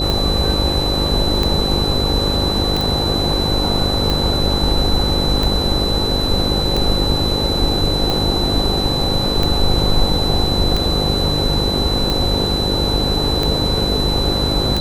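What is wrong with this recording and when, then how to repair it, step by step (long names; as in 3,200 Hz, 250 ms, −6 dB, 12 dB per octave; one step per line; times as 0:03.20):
mains buzz 50 Hz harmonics 11 −22 dBFS
scratch tick 45 rpm −6 dBFS
whistle 4,000 Hz −20 dBFS
0:02.81: click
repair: click removal
hum removal 50 Hz, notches 11
notch filter 4,000 Hz, Q 30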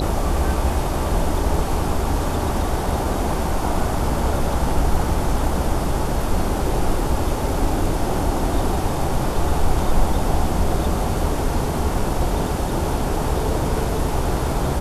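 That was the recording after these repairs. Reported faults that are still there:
none of them is left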